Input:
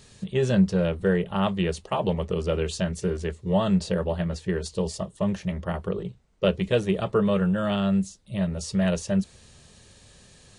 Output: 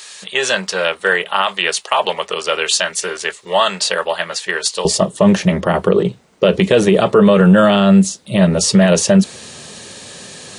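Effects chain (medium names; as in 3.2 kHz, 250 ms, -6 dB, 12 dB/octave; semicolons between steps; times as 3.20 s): high-pass 1.1 kHz 12 dB/octave, from 4.85 s 210 Hz; loudness maximiser +21 dB; trim -1 dB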